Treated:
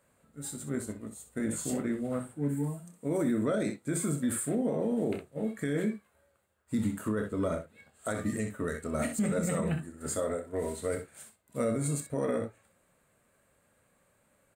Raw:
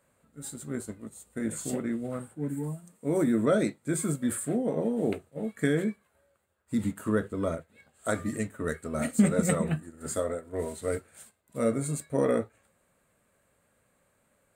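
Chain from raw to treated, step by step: on a send: early reflections 28 ms -10.5 dB, 63 ms -11 dB; on the sum: limiter -21.5 dBFS, peak gain reduction 10 dB

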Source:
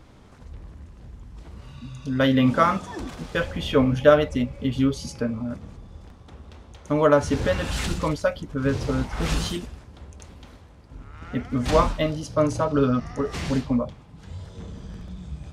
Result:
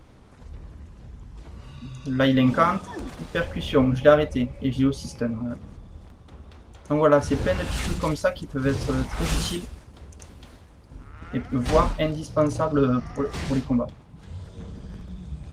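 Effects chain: 8.01–11.11 high shelf 2700 Hz -> 4500 Hz +5.5 dB; Opus 24 kbps 48000 Hz

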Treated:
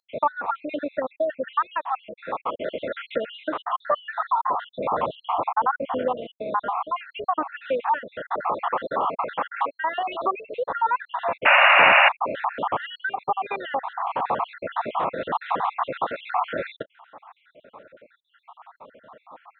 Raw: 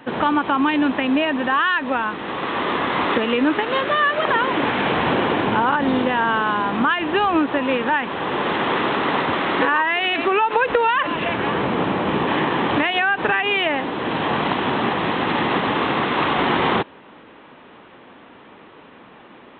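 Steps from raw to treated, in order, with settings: random spectral dropouts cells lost 67%; band shelf 820 Hz +14.5 dB; compressor 1.5:1, threshold -19 dBFS, peak gain reduction 6.5 dB; painted sound noise, 11.45–12.09, 540–2900 Hz -6 dBFS; gain -8.5 dB

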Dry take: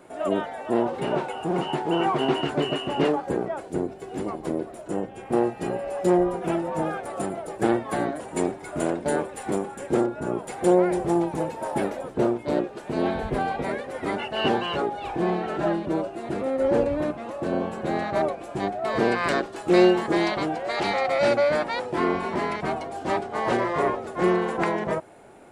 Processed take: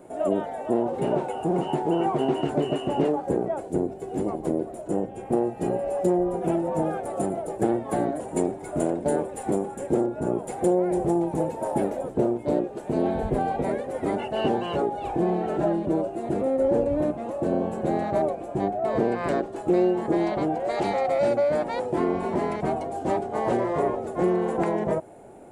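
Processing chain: high shelf 4000 Hz -3 dB, from 18.41 s -10 dB, from 20.6 s -3.5 dB; compressor 3:1, threshold -23 dBFS, peak gain reduction 8.5 dB; band shelf 2400 Hz -9 dB 2.7 oct; gain +3.5 dB

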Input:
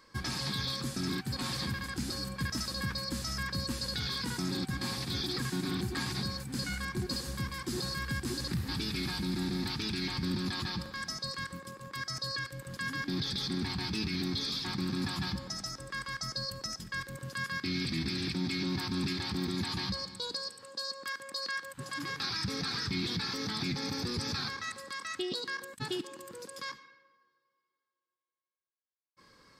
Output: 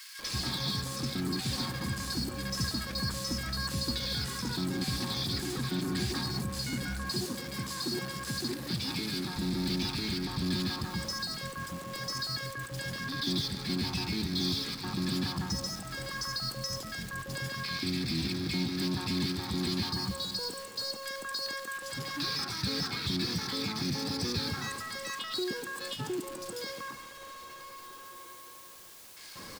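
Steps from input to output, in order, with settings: zero-crossing step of -39.5 dBFS; 6.91–9.17 HPF 140 Hz 12 dB/oct; bands offset in time highs, lows 0.19 s, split 1700 Hz

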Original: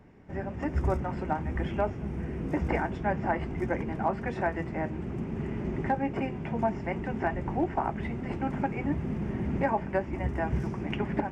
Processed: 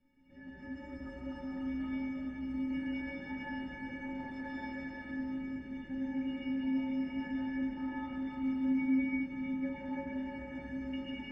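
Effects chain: LPF 5000 Hz 12 dB/oct; band shelf 770 Hz -10 dB; in parallel at -2.5 dB: negative-ratio compressor -36 dBFS; on the sum: metallic resonator 260 Hz, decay 0.73 s, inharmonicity 0.03; reverb RT60 5.1 s, pre-delay 0.107 s, DRR -8.5 dB

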